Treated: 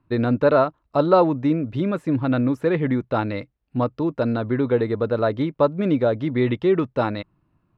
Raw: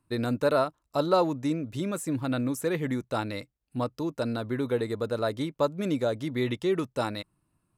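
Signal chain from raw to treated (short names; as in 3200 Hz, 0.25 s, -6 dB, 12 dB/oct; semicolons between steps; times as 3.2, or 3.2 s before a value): air absorption 340 m; gain +8.5 dB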